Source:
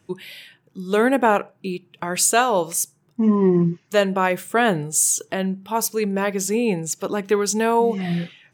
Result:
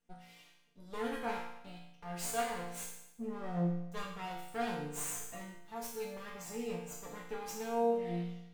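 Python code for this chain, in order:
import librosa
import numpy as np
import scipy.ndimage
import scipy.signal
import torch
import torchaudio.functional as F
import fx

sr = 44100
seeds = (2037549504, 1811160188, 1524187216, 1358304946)

y = fx.lower_of_two(x, sr, delay_ms=4.3)
y = fx.resonator_bank(y, sr, root=46, chord='major', decay_s=0.82)
y = y * librosa.db_to_amplitude(1.0)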